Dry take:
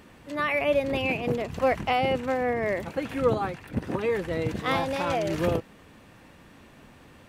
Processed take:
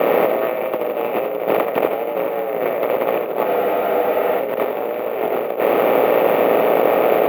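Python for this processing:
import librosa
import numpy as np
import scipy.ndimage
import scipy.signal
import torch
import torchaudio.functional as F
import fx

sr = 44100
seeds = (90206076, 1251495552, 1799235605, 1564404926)

p1 = fx.bin_compress(x, sr, power=0.2)
p2 = p1 * np.sin(2.0 * np.pi * 58.0 * np.arange(len(p1)) / sr)
p3 = fx.peak_eq(p2, sr, hz=500.0, db=11.0, octaves=2.1)
p4 = fx.over_compress(p3, sr, threshold_db=-15.0, ratio=-0.5)
p5 = fx.bandpass_edges(p4, sr, low_hz=240.0, high_hz=3000.0)
p6 = fx.notch(p5, sr, hz=1700.0, q=15.0)
p7 = p6 + fx.echo_single(p6, sr, ms=83, db=-7.5, dry=0)
p8 = np.repeat(scipy.signal.resample_poly(p7, 1, 3), 3)[:len(p7)]
p9 = fx.spec_freeze(p8, sr, seeds[0], at_s=3.49, hold_s=0.92)
y = p9 * librosa.db_to_amplitude(-3.0)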